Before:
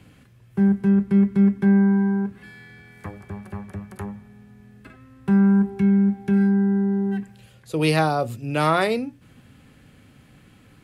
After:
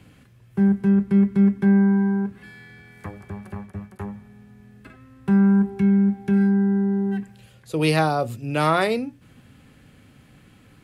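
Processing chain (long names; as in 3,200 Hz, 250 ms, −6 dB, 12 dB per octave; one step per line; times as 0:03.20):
0:03.55–0:04.00: downward expander −34 dBFS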